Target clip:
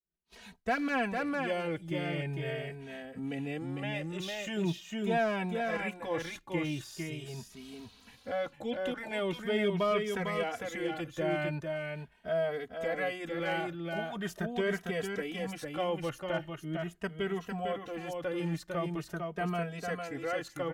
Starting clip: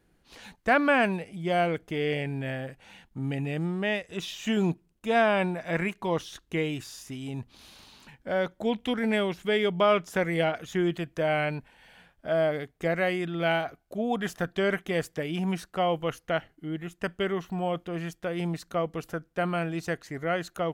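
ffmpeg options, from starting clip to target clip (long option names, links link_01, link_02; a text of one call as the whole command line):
ffmpeg -i in.wav -filter_complex "[0:a]agate=range=-33dB:threshold=-50dB:ratio=3:detection=peak,asplit=2[link_01][link_02];[link_02]alimiter=limit=-23dB:level=0:latency=1,volume=2dB[link_03];[link_01][link_03]amix=inputs=2:normalize=0,asoftclip=type=hard:threshold=-12.5dB,aecho=1:1:452:0.596,asplit=2[link_04][link_05];[link_05]adelay=2.8,afreqshift=0.42[link_06];[link_04][link_06]amix=inputs=2:normalize=1,volume=-8.5dB" out.wav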